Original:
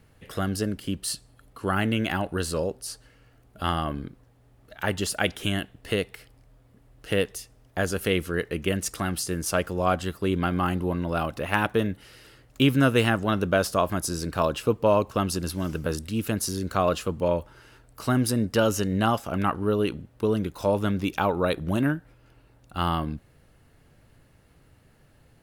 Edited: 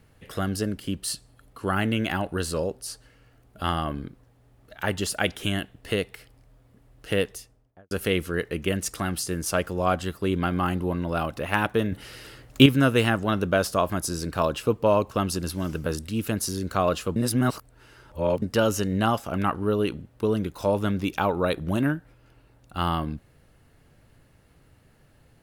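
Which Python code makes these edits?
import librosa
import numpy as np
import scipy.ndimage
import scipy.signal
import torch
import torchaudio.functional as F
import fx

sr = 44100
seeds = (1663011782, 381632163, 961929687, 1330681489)

y = fx.studio_fade_out(x, sr, start_s=7.24, length_s=0.67)
y = fx.edit(y, sr, fx.clip_gain(start_s=11.92, length_s=0.74, db=7.0),
    fx.reverse_span(start_s=17.16, length_s=1.26), tone=tone)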